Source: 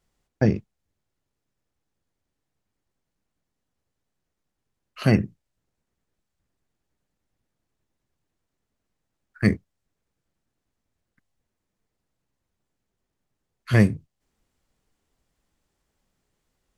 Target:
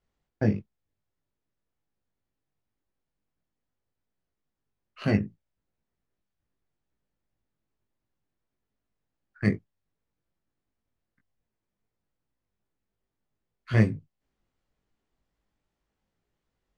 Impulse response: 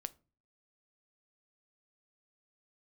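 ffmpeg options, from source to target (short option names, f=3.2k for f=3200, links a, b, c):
-af "flanger=delay=18:depth=2.3:speed=2.6,adynamicsmooth=sensitivity=2.5:basefreq=5.5k,volume=-2dB"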